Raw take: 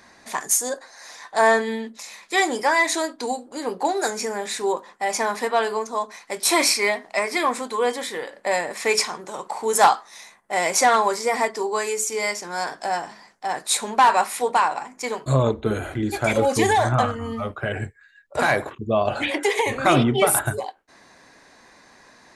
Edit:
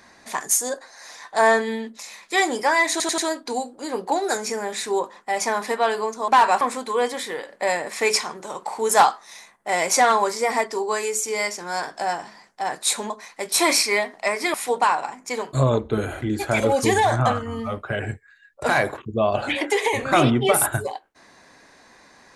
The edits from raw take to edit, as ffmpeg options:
-filter_complex "[0:a]asplit=8[a][b][c][d][e][f][g][h];[a]atrim=end=3.002[i];[b]atrim=start=2.908:end=3.002[j];[c]atrim=start=2.908:end=3.002[k];[d]atrim=start=2.908:end=6.012[l];[e]atrim=start=13.938:end=14.272[m];[f]atrim=start=7.448:end=13.942[n];[g]atrim=start=6.008:end=7.452[o];[h]atrim=start=14.268[p];[i][j]acrossfade=d=0.004:c1=hsin:c2=hsin[q];[q][k]acrossfade=d=0.004:c1=hsin:c2=hsin[r];[r][l]acrossfade=d=0.004:c1=hsin:c2=hsin[s];[s][m]acrossfade=d=0.004:c1=hsin:c2=hsin[t];[t][n]acrossfade=d=0.004:c1=hsin:c2=hsin[u];[u][o]acrossfade=d=0.004:c1=hsin:c2=hsin[v];[v][p]acrossfade=d=0.004:c1=hsin:c2=hsin"

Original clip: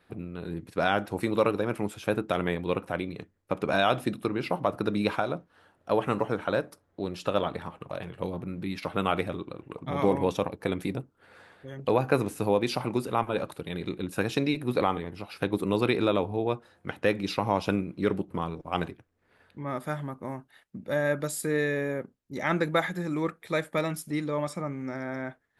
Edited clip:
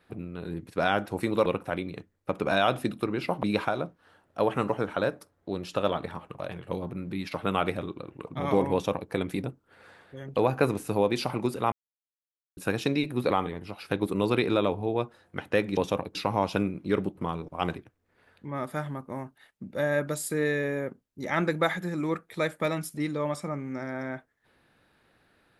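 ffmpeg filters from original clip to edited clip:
-filter_complex "[0:a]asplit=7[a][b][c][d][e][f][g];[a]atrim=end=1.462[h];[b]atrim=start=2.678:end=4.652[i];[c]atrim=start=4.938:end=13.23,asetpts=PTS-STARTPTS,afade=t=out:st=8.288:d=0.004:c=hsin[j];[d]atrim=start=13.23:end=14.08,asetpts=PTS-STARTPTS,volume=0[k];[e]atrim=start=14.08:end=17.282,asetpts=PTS-STARTPTS,afade=t=in:d=0.004:c=hsin[l];[f]atrim=start=10.238:end=10.622[m];[g]atrim=start=17.278[n];[h][i]acrossfade=d=0.004:c1=hsin:c2=hsin[o];[j][k][l]concat=n=3:v=0:a=1[p];[o][p]acrossfade=d=0.004:c1=hsin:c2=hsin[q];[q][m]acrossfade=d=0.004:c1=hsin:c2=hsin[r];[r][n]acrossfade=d=0.004:c1=hsin:c2=hsin"

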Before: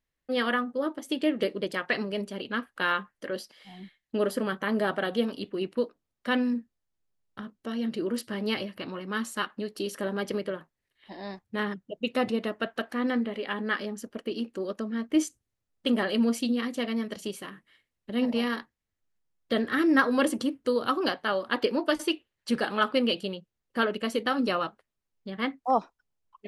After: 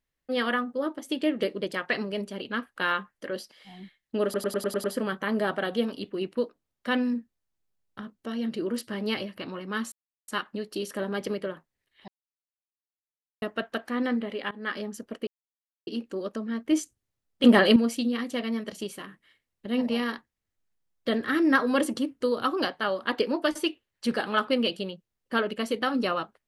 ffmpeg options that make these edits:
-filter_complex "[0:a]asplit=14[a][b][c][d][e][f][g][h][i][j][k][l][m][n];[a]atrim=end=4.342[o];[b]atrim=start=4.238:end=4.342[p];[c]atrim=start=4.238:end=4.342[q];[d]atrim=start=4.238:end=4.342[r];[e]atrim=start=4.238:end=4.342[s];[f]atrim=start=4.238:end=4.342[t];[g]atrim=start=4.238:end=9.32,asetpts=PTS-STARTPTS,afade=t=out:st=5.078:d=0.004:c=hsin,apad=pad_dur=0.36[u];[h]atrim=start=9.32:end=11.12,asetpts=PTS-STARTPTS,afade=t=in:d=0.004:c=hsin,afade=t=out:st=1.796:d=0.004:c=hsin[v];[i]atrim=start=11.12:end=12.46,asetpts=PTS-STARTPTS,volume=0[w];[j]atrim=start=12.46:end=13.55,asetpts=PTS-STARTPTS,afade=t=in:d=0.004:c=hsin,afade=t=out:st=1.086:d=0.004:c=hsin:silence=0.0891251[x];[k]atrim=start=13.55:end=14.31,asetpts=PTS-STARTPTS,afade=t=in:d=0.26:silence=0.0891251,afade=t=out:st=0.756:d=0.004:c=hsin,apad=pad_dur=0.6[y];[l]atrim=start=14.31:end=15.882,asetpts=PTS-STARTPTS,afade=t=in:d=0.004:c=hsin[z];[m]atrim=start=15.878:end=16.202,asetpts=PTS-STARTPTS,volume=9dB[aa];[n]atrim=start=16.198[ab];[o][p]acrossfade=d=0.004:c1=hsin:c2=hsin[ac];[ac][q]acrossfade=d=0.004:c1=hsin:c2=hsin[ad];[ad][r]acrossfade=d=0.004:c1=hsin:c2=hsin[ae];[ae][s]acrossfade=d=0.004:c1=hsin:c2=hsin[af];[af][t]acrossfade=d=0.004:c1=hsin:c2=hsin[ag];[u][v][w][x][y][z]concat=n=6:v=0:a=1[ah];[ag][ah]acrossfade=d=0.004:c1=hsin:c2=hsin[ai];[ai][aa]acrossfade=d=0.004:c1=hsin:c2=hsin[aj];[aj][ab]acrossfade=d=0.004:c1=hsin:c2=hsin"

